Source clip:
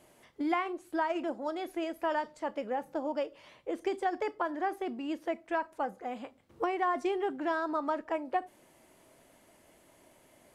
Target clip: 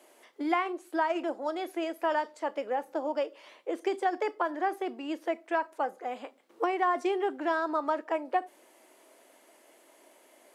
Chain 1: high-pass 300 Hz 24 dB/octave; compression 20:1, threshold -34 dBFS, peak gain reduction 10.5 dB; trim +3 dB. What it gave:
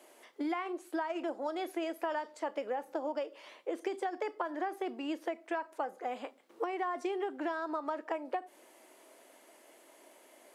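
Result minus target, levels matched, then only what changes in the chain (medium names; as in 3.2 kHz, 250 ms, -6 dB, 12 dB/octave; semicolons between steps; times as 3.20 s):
compression: peak gain reduction +10.5 dB
remove: compression 20:1, threshold -34 dBFS, peak gain reduction 10.5 dB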